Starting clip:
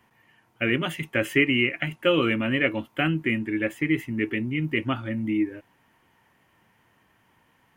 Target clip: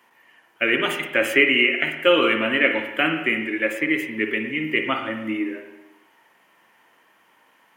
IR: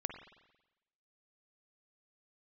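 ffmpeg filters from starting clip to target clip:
-filter_complex "[0:a]highpass=390,bandreject=f=750:w=24[s0];[1:a]atrim=start_sample=2205[s1];[s0][s1]afir=irnorm=-1:irlink=0,volume=2.24"

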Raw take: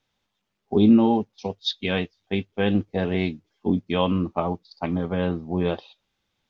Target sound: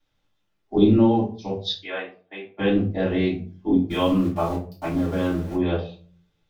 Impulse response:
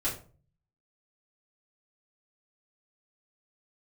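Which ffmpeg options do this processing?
-filter_complex "[0:a]asettb=1/sr,asplit=3[s0][s1][s2];[s0]atrim=end=1.784[s3];[s1]atrim=start=1.78:end=2.59,asetpts=PTS-STARTPTS,afade=t=in:d=0.004:c=qsin,afade=t=out:st=0.806:d=0.004:c=qsin,highpass=720,lowpass=2000[s4];[s2]atrim=start=2.586[s5];[s3][s4]acrossfade=d=0.004:c1=hsin:c2=qsin[s6];[s6][s5]acrossfade=d=0.004:c1=qsin:c2=hsin,asplit=3[s7][s8][s9];[s7]afade=t=out:st=3.89:d=0.02[s10];[s8]aeval=exprs='val(0)*gte(abs(val(0)),0.015)':c=same,afade=t=in:st=3.89:d=0.02,afade=t=out:st=5.53:d=0.02[s11];[s9]afade=t=in:st=5.53:d=0.02[s12];[s10][s11][s12]amix=inputs=3:normalize=0[s13];[1:a]atrim=start_sample=2205[s14];[s13][s14]afir=irnorm=-1:irlink=0,volume=0.531"

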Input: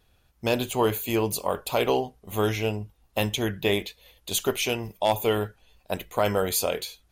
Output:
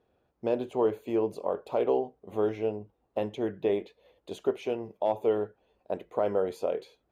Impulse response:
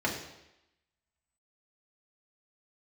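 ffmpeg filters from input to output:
-filter_complex "[0:a]asplit=2[s0][s1];[s1]acompressor=threshold=0.02:ratio=6,volume=0.944[s2];[s0][s2]amix=inputs=2:normalize=0,bandpass=f=440:t=q:w=1.2:csg=0,volume=0.75"

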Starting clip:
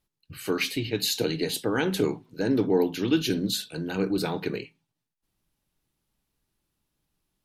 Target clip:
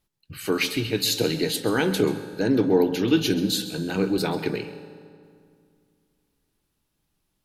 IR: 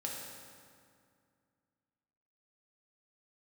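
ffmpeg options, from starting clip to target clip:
-filter_complex "[0:a]asplit=2[s0][s1];[1:a]atrim=start_sample=2205,adelay=132[s2];[s1][s2]afir=irnorm=-1:irlink=0,volume=0.237[s3];[s0][s3]amix=inputs=2:normalize=0,volume=1.41"

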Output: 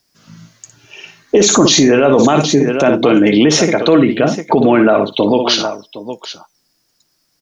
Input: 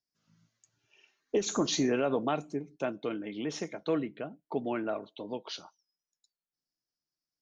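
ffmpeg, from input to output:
-filter_complex "[0:a]asplit=2[s0][s1];[s1]aecho=0:1:59|763:0.282|0.15[s2];[s0][s2]amix=inputs=2:normalize=0,alimiter=level_in=29.9:limit=0.891:release=50:level=0:latency=1,volume=0.891"

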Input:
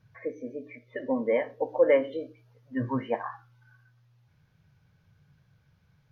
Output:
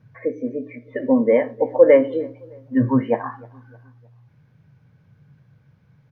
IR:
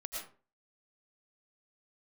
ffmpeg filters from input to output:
-filter_complex "[0:a]equalizer=f=125:t=o:w=1:g=11,equalizer=f=250:t=o:w=1:g=11,equalizer=f=500:t=o:w=1:g=8,equalizer=f=1000:t=o:w=1:g=5,equalizer=f=2000:t=o:w=1:g=6,asplit=2[s0][s1];[s1]adelay=308,lowpass=f=1500:p=1,volume=0.0668,asplit=2[s2][s3];[s3]adelay=308,lowpass=f=1500:p=1,volume=0.44,asplit=2[s4][s5];[s5]adelay=308,lowpass=f=1500:p=1,volume=0.44[s6];[s2][s4][s6]amix=inputs=3:normalize=0[s7];[s0][s7]amix=inputs=2:normalize=0,volume=0.794"

